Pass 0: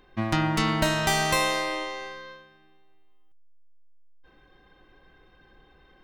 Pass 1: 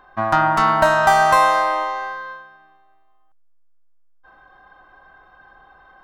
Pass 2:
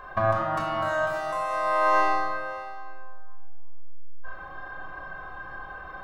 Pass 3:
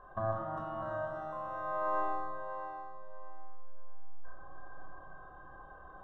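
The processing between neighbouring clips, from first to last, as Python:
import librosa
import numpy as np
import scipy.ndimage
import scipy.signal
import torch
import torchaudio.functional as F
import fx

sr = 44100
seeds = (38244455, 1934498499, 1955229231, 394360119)

y1 = fx.band_shelf(x, sr, hz=1000.0, db=16.0, octaves=1.7)
y1 = F.gain(torch.from_numpy(y1), -2.0).numpy()
y2 = fx.over_compress(y1, sr, threshold_db=-26.0, ratio=-1.0)
y2 = y2 + 10.0 ** (-16.5 / 20.0) * np.pad(y2, (int(567 * sr / 1000.0), 0))[:len(y2)]
y2 = fx.room_shoebox(y2, sr, seeds[0], volume_m3=3600.0, walls='furnished', distance_m=5.6)
y2 = F.gain(torch.from_numpy(y2), -3.5).numpy()
y3 = np.convolve(y2, np.full(19, 1.0 / 19))[:len(y2)]
y3 = fx.echo_feedback(y3, sr, ms=645, feedback_pct=30, wet_db=-10.5)
y3 = F.gain(torch.from_numpy(y3), -9.0).numpy()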